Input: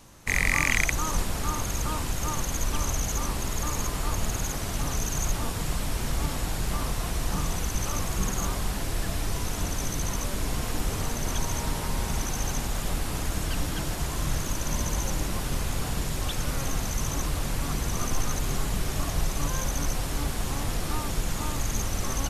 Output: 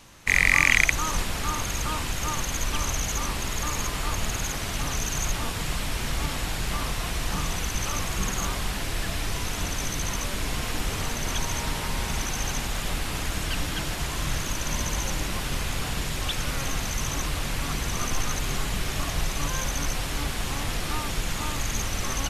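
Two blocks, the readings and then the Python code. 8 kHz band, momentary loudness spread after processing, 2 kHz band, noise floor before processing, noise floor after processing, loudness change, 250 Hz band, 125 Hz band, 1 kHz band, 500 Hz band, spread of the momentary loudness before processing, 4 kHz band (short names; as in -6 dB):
+1.5 dB, 2 LU, +5.5 dB, -32 dBFS, -31 dBFS, +2.0 dB, -1.0 dB, -1.0 dB, +2.0 dB, 0.0 dB, 2 LU, +5.0 dB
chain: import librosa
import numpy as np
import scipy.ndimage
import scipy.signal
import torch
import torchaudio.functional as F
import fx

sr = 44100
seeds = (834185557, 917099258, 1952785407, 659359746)

y = fx.peak_eq(x, sr, hz=2600.0, db=7.5, octaves=2.1)
y = F.gain(torch.from_numpy(y), -1.0).numpy()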